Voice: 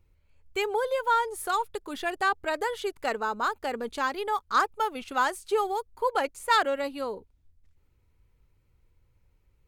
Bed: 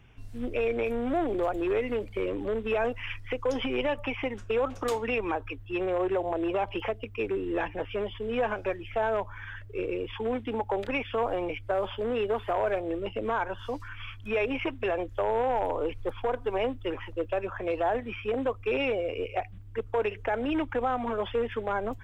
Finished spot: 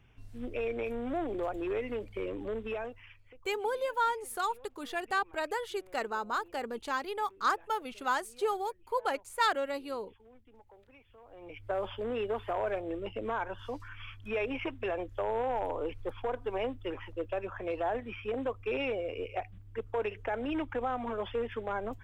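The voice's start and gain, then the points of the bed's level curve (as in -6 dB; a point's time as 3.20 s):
2.90 s, -5.0 dB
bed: 2.64 s -6 dB
3.49 s -29 dB
11.23 s -29 dB
11.66 s -5 dB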